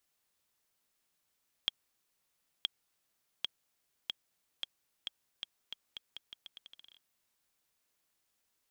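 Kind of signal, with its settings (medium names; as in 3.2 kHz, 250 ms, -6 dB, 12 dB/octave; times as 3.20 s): bouncing ball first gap 0.97 s, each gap 0.82, 3.28 kHz, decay 18 ms -15 dBFS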